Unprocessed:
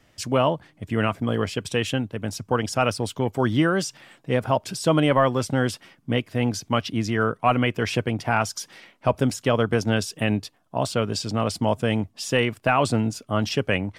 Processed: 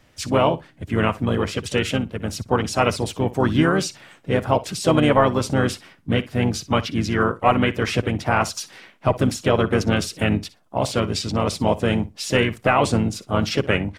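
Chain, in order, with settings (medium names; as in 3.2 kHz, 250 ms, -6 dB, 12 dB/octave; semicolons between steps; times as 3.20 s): flutter echo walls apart 10.3 m, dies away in 0.2 s; harmony voices -12 st -17 dB, -4 st -6 dB, +3 st -16 dB; trim +1.5 dB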